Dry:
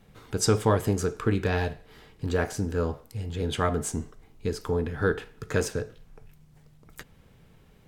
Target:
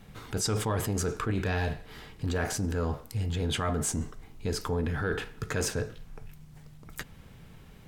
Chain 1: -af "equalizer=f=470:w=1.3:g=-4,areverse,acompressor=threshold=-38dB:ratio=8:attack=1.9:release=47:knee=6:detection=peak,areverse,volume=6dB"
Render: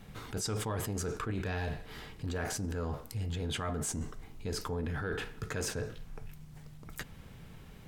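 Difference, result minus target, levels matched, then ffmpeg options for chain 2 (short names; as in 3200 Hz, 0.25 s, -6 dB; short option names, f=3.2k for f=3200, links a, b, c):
compressor: peak gain reduction +6 dB
-af "equalizer=f=470:w=1.3:g=-4,areverse,acompressor=threshold=-31dB:ratio=8:attack=1.9:release=47:knee=6:detection=peak,areverse,volume=6dB"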